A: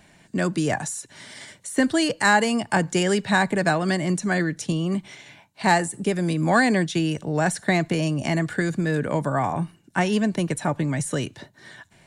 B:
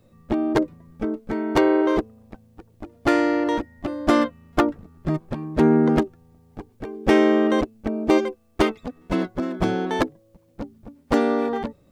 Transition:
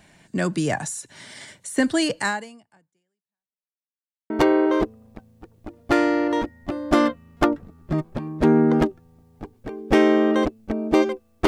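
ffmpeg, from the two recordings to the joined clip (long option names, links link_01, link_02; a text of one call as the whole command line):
ffmpeg -i cue0.wav -i cue1.wav -filter_complex "[0:a]apad=whole_dur=11.47,atrim=end=11.47,asplit=2[link_01][link_02];[link_01]atrim=end=3.71,asetpts=PTS-STARTPTS,afade=type=out:start_time=2.19:duration=1.52:curve=exp[link_03];[link_02]atrim=start=3.71:end=4.3,asetpts=PTS-STARTPTS,volume=0[link_04];[1:a]atrim=start=1.46:end=8.63,asetpts=PTS-STARTPTS,afade=type=in:duration=0.004:curve=hsin[link_05];[link_03][link_04][link_05]concat=n=3:v=0:a=1" out.wav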